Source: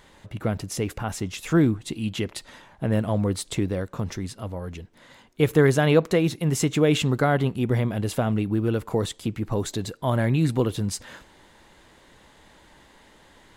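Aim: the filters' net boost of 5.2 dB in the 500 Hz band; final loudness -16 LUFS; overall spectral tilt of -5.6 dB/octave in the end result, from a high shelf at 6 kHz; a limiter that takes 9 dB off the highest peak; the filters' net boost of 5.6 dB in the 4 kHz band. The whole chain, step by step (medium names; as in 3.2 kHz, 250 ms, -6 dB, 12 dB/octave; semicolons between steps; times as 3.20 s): peaking EQ 500 Hz +6 dB; peaking EQ 4 kHz +8.5 dB; treble shelf 6 kHz -4.5 dB; trim +8 dB; peak limiter -3.5 dBFS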